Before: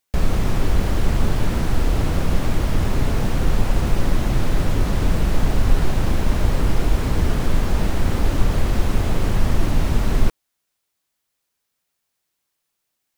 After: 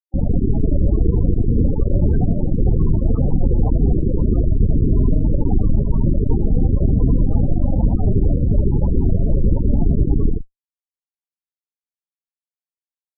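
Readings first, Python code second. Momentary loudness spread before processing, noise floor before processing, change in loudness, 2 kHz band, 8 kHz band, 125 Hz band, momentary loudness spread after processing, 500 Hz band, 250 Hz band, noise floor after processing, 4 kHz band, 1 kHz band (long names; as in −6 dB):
1 LU, −77 dBFS, +3.5 dB, below −25 dB, below −40 dB, +4.5 dB, 2 LU, +2.0 dB, +5.5 dB, below −85 dBFS, below −40 dB, −9.5 dB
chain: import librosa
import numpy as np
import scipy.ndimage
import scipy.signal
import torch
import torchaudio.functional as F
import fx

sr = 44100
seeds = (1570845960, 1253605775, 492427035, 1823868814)

y = fx.octave_divider(x, sr, octaves=1, level_db=-2.0)
y = scipy.signal.sosfilt(scipy.signal.butter(12, 4000.0, 'lowpass', fs=sr, output='sos'), y)
y = fx.fuzz(y, sr, gain_db=32.0, gate_db=-33.0)
y = y + 10.0 ** (-3.5 / 20.0) * np.pad(y, (int(82 * sr / 1000.0), 0))[:len(y)]
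y = fx.spec_topn(y, sr, count=16)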